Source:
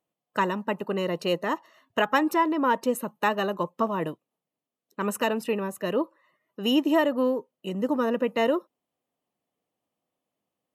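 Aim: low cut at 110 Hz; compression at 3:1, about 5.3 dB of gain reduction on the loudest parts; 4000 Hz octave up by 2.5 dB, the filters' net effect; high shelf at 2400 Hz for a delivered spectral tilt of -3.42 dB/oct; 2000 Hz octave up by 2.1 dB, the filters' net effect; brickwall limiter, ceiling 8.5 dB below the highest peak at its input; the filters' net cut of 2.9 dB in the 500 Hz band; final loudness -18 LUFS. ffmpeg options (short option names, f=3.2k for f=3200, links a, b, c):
-af "highpass=110,equalizer=f=500:t=o:g=-3.5,equalizer=f=2k:t=o:g=3.5,highshelf=f=2.4k:g=-5,equalizer=f=4k:t=o:g=7,acompressor=threshold=-25dB:ratio=3,volume=14.5dB,alimiter=limit=-6dB:level=0:latency=1"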